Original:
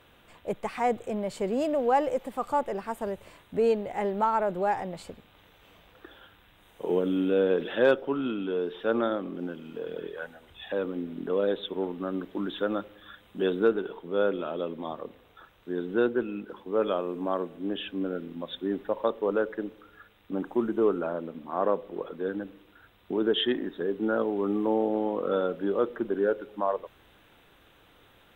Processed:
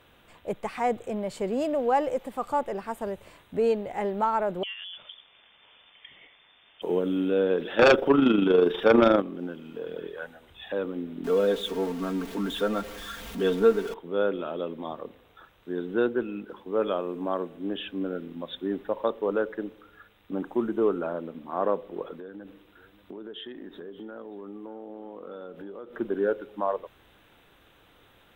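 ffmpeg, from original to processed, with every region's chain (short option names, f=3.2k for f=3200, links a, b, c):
-filter_complex "[0:a]asettb=1/sr,asplit=3[a][b][c];[a]atrim=end=4.634[d];[b]atrim=start=4.63:end=6.82,asetpts=PTS-STARTPTS,afade=t=in:d=0.004:c=qsin,afade=t=out:st=2.186:d=0.004:c=qsin,acompressor=threshold=-38dB:ratio=3:attack=3.2:release=140:knee=1:detection=peak,lowpass=f=3.1k:t=q:w=0.5098,lowpass=f=3.1k:t=q:w=0.6013,lowpass=f=3.1k:t=q:w=0.9,lowpass=f=3.1k:t=q:w=2.563,afreqshift=-3600[e];[c]atrim=start=6.816[f];[d][e]acrossfade=d=0.004:c1=hsin:c2=qsin[g];[g][f]acrossfade=d=0.004:c1=qsin:c2=hsin,asettb=1/sr,asplit=3[h][i][j];[h]atrim=end=7.794[k];[i]atrim=start=7.79:end=9.22,asetpts=PTS-STARTPTS,afade=t=in:d=0.004:c=qsin,afade=t=out:st=1.426:d=0.004:c=qsin,tremolo=f=25:d=0.571,aeval=exprs='0.266*sin(PI/2*2.82*val(0)/0.266)':c=same,bandreject=f=4.1k:w=12[l];[j]atrim=start=9.216[m];[k][l]acrossfade=d=0.004:c1=hsin:c2=qsin[n];[n][m]acrossfade=d=0.004:c1=qsin:c2=hsin,asettb=1/sr,asplit=3[o][p][q];[o]atrim=end=11.244[r];[p]atrim=start=11.24:end=13.94,asetpts=PTS-STARTPTS,afade=t=in:d=0.004:c=qsin,afade=t=out:st=2.696:d=0.004:c=qsin,aeval=exprs='val(0)+0.5*0.0126*sgn(val(0))':c=same,aecho=1:1:4.4:0.69,atrim=end_sample=119070,asubboost=boost=2:cutoff=140[s];[q]atrim=start=13.936[t];[r][s]acrossfade=d=0.004:c1=hsin:c2=qsin[u];[u][t]acrossfade=d=0.004:c1=qsin:c2=hsin,asettb=1/sr,asplit=3[v][w][x];[v]atrim=end=22.194[y];[w]atrim=start=22.19:end=25.96,asetpts=PTS-STARTPTS,afade=t=in:d=0.004:c=qsin,afade=t=out:st=3.766:d=0.004:c=qsin,acompressor=threshold=-38dB:ratio=6:attack=3.2:release=140:knee=1:detection=peak,aecho=1:1:582:0.119,atrim=end_sample=166257[z];[x]atrim=start=25.956[aa];[y][z]acrossfade=d=0.004:c1=hsin:c2=qsin[ab];[ab][aa]acrossfade=d=0.004:c1=qsin:c2=hsin"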